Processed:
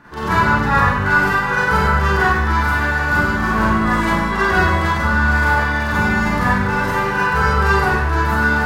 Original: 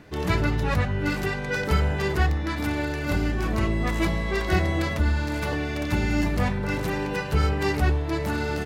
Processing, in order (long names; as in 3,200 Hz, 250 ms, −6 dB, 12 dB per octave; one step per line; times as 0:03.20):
flat-topped bell 1,200 Hz +12 dB 1.2 octaves
echo with a time of its own for lows and highs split 520 Hz, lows 95 ms, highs 748 ms, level −11 dB
convolution reverb RT60 0.85 s, pre-delay 32 ms, DRR −8.5 dB
level −4 dB